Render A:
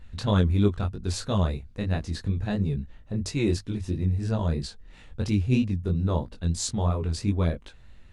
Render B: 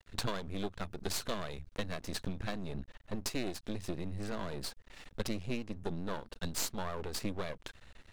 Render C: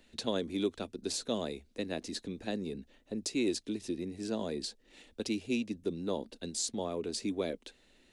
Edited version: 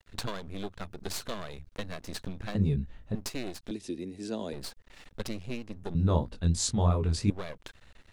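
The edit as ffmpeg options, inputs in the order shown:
-filter_complex "[0:a]asplit=2[s0][s1];[1:a]asplit=4[s2][s3][s4][s5];[s2]atrim=end=2.552[s6];[s0]atrim=start=2.548:end=3.152[s7];[s3]atrim=start=3.148:end=3.712[s8];[2:a]atrim=start=3.708:end=4.532[s9];[s4]atrim=start=4.528:end=5.952[s10];[s1]atrim=start=5.948:end=7.302[s11];[s5]atrim=start=7.298[s12];[s6][s7]acrossfade=d=0.004:c1=hsin:c2=hsin[s13];[s13][s8]acrossfade=d=0.004:c1=hsin:c2=hsin[s14];[s14][s9]acrossfade=d=0.004:c1=hsin:c2=hsin[s15];[s15][s10]acrossfade=d=0.004:c1=hsin:c2=hsin[s16];[s16][s11]acrossfade=d=0.004:c1=hsin:c2=hsin[s17];[s17][s12]acrossfade=d=0.004:c1=hsin:c2=hsin"

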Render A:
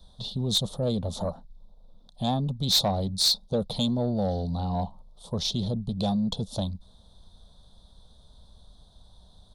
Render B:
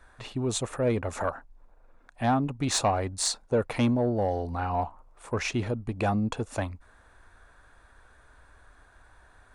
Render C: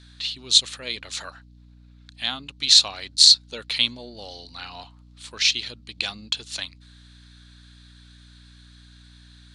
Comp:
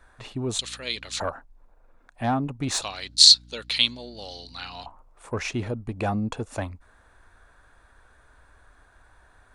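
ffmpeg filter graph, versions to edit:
-filter_complex "[2:a]asplit=2[s0][s1];[1:a]asplit=3[s2][s3][s4];[s2]atrim=end=0.592[s5];[s0]atrim=start=0.588:end=1.202[s6];[s3]atrim=start=1.198:end=2.822[s7];[s1]atrim=start=2.818:end=4.862[s8];[s4]atrim=start=4.858[s9];[s5][s6]acrossfade=d=0.004:c1=hsin:c2=hsin[s10];[s10][s7]acrossfade=d=0.004:c1=hsin:c2=hsin[s11];[s11][s8]acrossfade=d=0.004:c1=hsin:c2=hsin[s12];[s12][s9]acrossfade=d=0.004:c1=hsin:c2=hsin"

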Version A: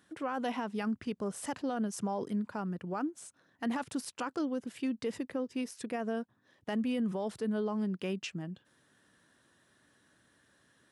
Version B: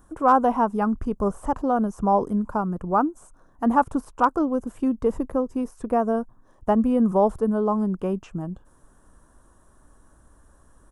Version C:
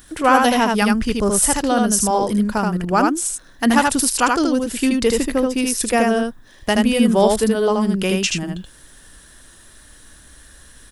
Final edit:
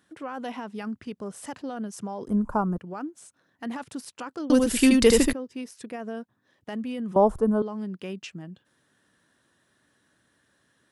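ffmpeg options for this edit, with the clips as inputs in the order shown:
-filter_complex "[1:a]asplit=2[s0][s1];[0:a]asplit=4[s2][s3][s4][s5];[s2]atrim=end=2.282[s6];[s0]atrim=start=2.278:end=2.782[s7];[s3]atrim=start=2.778:end=4.502[s8];[2:a]atrim=start=4.498:end=5.332[s9];[s4]atrim=start=5.328:end=7.162[s10];[s1]atrim=start=7.158:end=7.622[s11];[s5]atrim=start=7.618[s12];[s6][s7]acrossfade=d=0.004:c1=hsin:c2=hsin[s13];[s13][s8]acrossfade=d=0.004:c1=hsin:c2=hsin[s14];[s14][s9]acrossfade=d=0.004:c1=hsin:c2=hsin[s15];[s15][s10]acrossfade=d=0.004:c1=hsin:c2=hsin[s16];[s16][s11]acrossfade=d=0.004:c1=hsin:c2=hsin[s17];[s17][s12]acrossfade=d=0.004:c1=hsin:c2=hsin"

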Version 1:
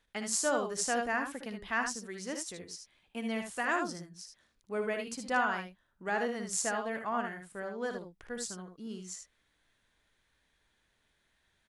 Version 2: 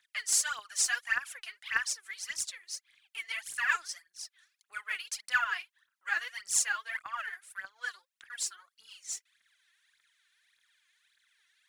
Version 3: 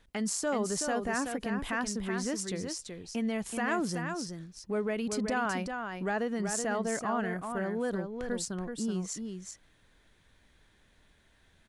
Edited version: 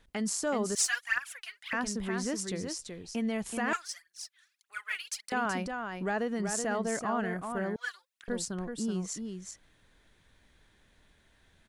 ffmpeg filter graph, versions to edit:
-filter_complex "[1:a]asplit=3[s0][s1][s2];[2:a]asplit=4[s3][s4][s5][s6];[s3]atrim=end=0.752[s7];[s0]atrim=start=0.748:end=1.732[s8];[s4]atrim=start=1.728:end=3.732[s9];[s1]atrim=start=3.728:end=5.322[s10];[s5]atrim=start=5.318:end=7.762[s11];[s2]atrim=start=7.758:end=8.282[s12];[s6]atrim=start=8.278[s13];[s7][s8]acrossfade=d=0.004:c1=hsin:c2=hsin[s14];[s14][s9]acrossfade=d=0.004:c1=hsin:c2=hsin[s15];[s15][s10]acrossfade=d=0.004:c1=hsin:c2=hsin[s16];[s16][s11]acrossfade=d=0.004:c1=hsin:c2=hsin[s17];[s17][s12]acrossfade=d=0.004:c1=hsin:c2=hsin[s18];[s18][s13]acrossfade=d=0.004:c1=hsin:c2=hsin"

